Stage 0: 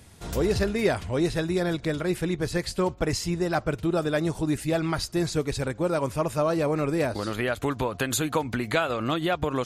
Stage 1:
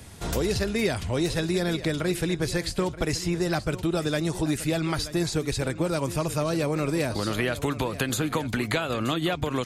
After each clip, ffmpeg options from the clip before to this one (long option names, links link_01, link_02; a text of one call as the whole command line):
ffmpeg -i in.wav -filter_complex "[0:a]acrossover=split=300|2400[link_01][link_02][link_03];[link_01]acompressor=threshold=-34dB:ratio=4[link_04];[link_02]acompressor=threshold=-35dB:ratio=4[link_05];[link_03]acompressor=threshold=-37dB:ratio=4[link_06];[link_04][link_05][link_06]amix=inputs=3:normalize=0,aecho=1:1:929:0.188,volume=6dB" out.wav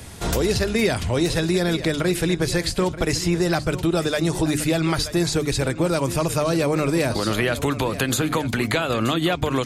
ffmpeg -i in.wav -filter_complex "[0:a]bandreject=frequency=50:width_type=h:width=6,bandreject=frequency=100:width_type=h:width=6,bandreject=frequency=150:width_type=h:width=6,bandreject=frequency=200:width_type=h:width=6,bandreject=frequency=250:width_type=h:width=6,bandreject=frequency=300:width_type=h:width=6,asplit=2[link_01][link_02];[link_02]alimiter=limit=-19.5dB:level=0:latency=1:release=112,volume=1.5dB[link_03];[link_01][link_03]amix=inputs=2:normalize=0" out.wav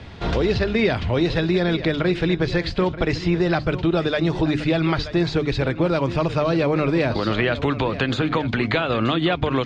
ffmpeg -i in.wav -af "lowpass=frequency=4000:width=0.5412,lowpass=frequency=4000:width=1.3066,volume=1dB" out.wav